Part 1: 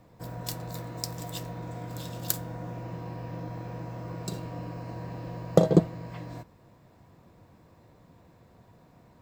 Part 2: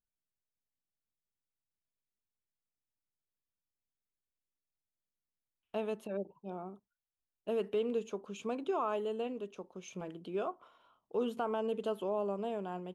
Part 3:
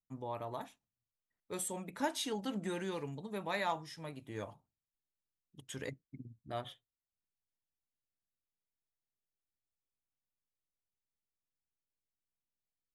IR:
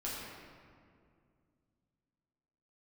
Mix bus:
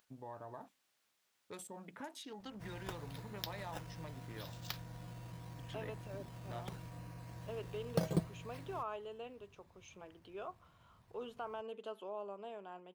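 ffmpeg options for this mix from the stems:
-filter_complex "[0:a]lowpass=f=6000:w=0.5412,lowpass=f=6000:w=1.3066,equalizer=f=410:w=0.39:g=-13.5,acrusher=samples=8:mix=1:aa=0.000001:lfo=1:lforange=8:lforate=0.8,adelay=2400,volume=0.596[s0];[1:a]lowpass=f=4000:p=1,acompressor=mode=upward:threshold=0.00501:ratio=2.5,highpass=f=910:p=1,volume=0.631[s1];[2:a]acrossover=split=770|7200[s2][s3][s4];[s2]acompressor=threshold=0.00398:ratio=4[s5];[s3]acompressor=threshold=0.00355:ratio=4[s6];[s4]acompressor=threshold=0.00126:ratio=4[s7];[s5][s6][s7]amix=inputs=3:normalize=0,afwtdn=0.00141,volume=0.794[s8];[s0][s1][s8]amix=inputs=3:normalize=0"

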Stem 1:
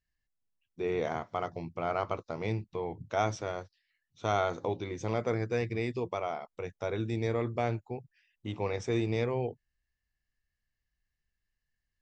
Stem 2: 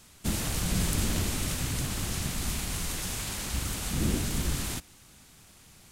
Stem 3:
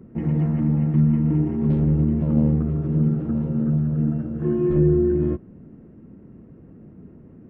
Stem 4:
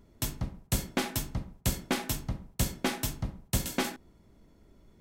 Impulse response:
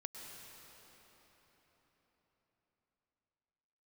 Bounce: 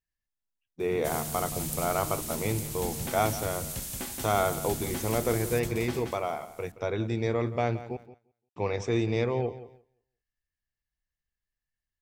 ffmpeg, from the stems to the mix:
-filter_complex "[0:a]volume=1.41,asplit=3[s0][s1][s2];[s0]atrim=end=7.97,asetpts=PTS-STARTPTS,afade=t=out:st=7.966:d=0.004:c=hsin[s3];[s1]atrim=start=7.97:end=8.56,asetpts=PTS-STARTPTS,volume=0[s4];[s2]atrim=start=8.56,asetpts=PTS-STARTPTS,afade=t=in:d=0.004:c=hsin[s5];[s3][s4][s5]concat=n=3:v=0:a=1,asplit=3[s6][s7][s8];[s7]volume=0.178[s9];[1:a]aemphasis=mode=production:type=75fm,adelay=800,volume=0.188,asplit=2[s10][s11];[s11]volume=0.0794[s12];[2:a]acrusher=bits=3:mode=log:mix=0:aa=0.000001,asoftclip=type=tanh:threshold=0.0794,adelay=750,volume=0.168[s13];[3:a]adelay=2100,volume=0.316,asplit=2[s14][s15];[s15]volume=0.631[s16];[s8]apad=whole_len=363785[s17];[s13][s17]sidechaingate=range=0.0224:threshold=0.00562:ratio=16:detection=peak[s18];[s9][s12][s16]amix=inputs=3:normalize=0,aecho=0:1:174|348|522|696:1|0.26|0.0676|0.0176[s19];[s6][s10][s18][s14][s19]amix=inputs=5:normalize=0,agate=range=0.355:threshold=0.00251:ratio=16:detection=peak"

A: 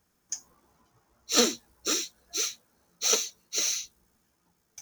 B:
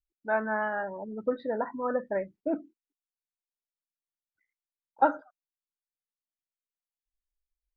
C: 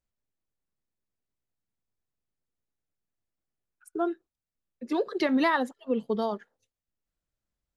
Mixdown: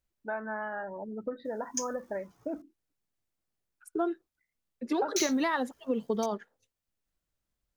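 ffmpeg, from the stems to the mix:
-filter_complex "[0:a]adelay=1450,volume=1.12,asplit=3[s0][s1][s2];[s0]atrim=end=2.62,asetpts=PTS-STARTPTS,afade=t=out:st=2.616:d=0.004:c=hsin[s3];[s1]atrim=start=2.62:end=5.16,asetpts=PTS-STARTPTS,volume=0[s4];[s2]atrim=start=5.16,asetpts=PTS-STARTPTS,afade=t=in:d=0.004:c=hsin[s5];[s3][s4][s5]concat=n=3:v=0:a=1[s6];[1:a]acompressor=threshold=0.0224:ratio=3,volume=0.944[s7];[2:a]acompressor=threshold=0.0447:ratio=5,volume=1.19[s8];[s6][s7][s8]amix=inputs=3:normalize=0"

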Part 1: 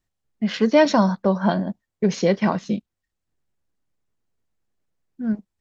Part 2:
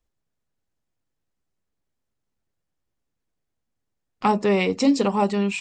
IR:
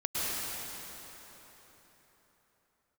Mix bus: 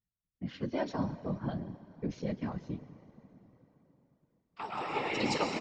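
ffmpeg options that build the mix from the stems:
-filter_complex "[0:a]equalizer=f=110:t=o:w=1.3:g=14,volume=0.188,asplit=3[s0][s1][s2];[s1]volume=0.0668[s3];[1:a]highpass=f=1300:p=1,adelay=350,volume=1.12,asplit=2[s4][s5];[s5]volume=0.335[s6];[s2]apad=whole_len=262743[s7];[s4][s7]sidechaingate=range=0.0224:threshold=0.00355:ratio=16:detection=peak[s8];[2:a]atrim=start_sample=2205[s9];[s3][s6]amix=inputs=2:normalize=0[s10];[s10][s9]afir=irnorm=-1:irlink=0[s11];[s0][s8][s11]amix=inputs=3:normalize=0,lowpass=5800,afftfilt=real='hypot(re,im)*cos(2*PI*random(0))':imag='hypot(re,im)*sin(2*PI*random(1))':win_size=512:overlap=0.75"

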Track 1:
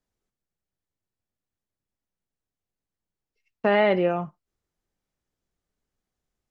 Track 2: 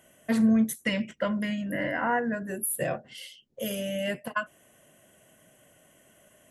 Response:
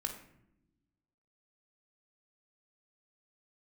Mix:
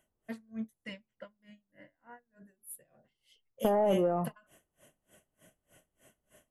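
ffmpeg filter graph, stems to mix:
-filter_complex "[0:a]asoftclip=type=tanh:threshold=0.158,lowpass=f=1200:w=0.5412,lowpass=f=1200:w=1.3066,acompressor=threshold=0.0501:ratio=3,volume=1.06[s0];[1:a]aeval=exprs='val(0)*pow(10,-33*(0.5-0.5*cos(2*PI*3.3*n/s))/20)':c=same,volume=3.16,afade=t=out:st=0.85:d=0.68:silence=0.298538,afade=t=in:st=2.33:d=0.22:silence=0.298538,afade=t=in:st=3.38:d=0.57:silence=0.237137[s1];[s0][s1]amix=inputs=2:normalize=0"

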